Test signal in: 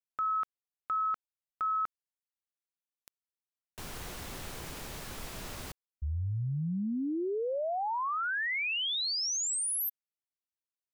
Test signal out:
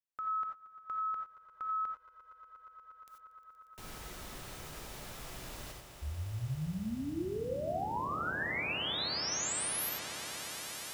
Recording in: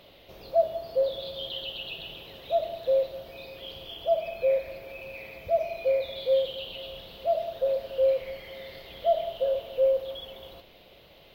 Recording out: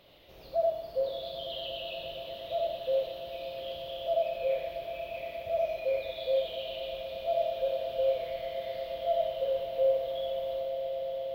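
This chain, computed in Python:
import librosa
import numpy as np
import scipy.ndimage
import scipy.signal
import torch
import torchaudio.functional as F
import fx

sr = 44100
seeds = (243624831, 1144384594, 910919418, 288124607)

y = fx.echo_swell(x, sr, ms=118, loudest=8, wet_db=-17)
y = fx.rev_gated(y, sr, seeds[0], gate_ms=110, shape='rising', drr_db=2.0)
y = y * librosa.db_to_amplitude(-6.5)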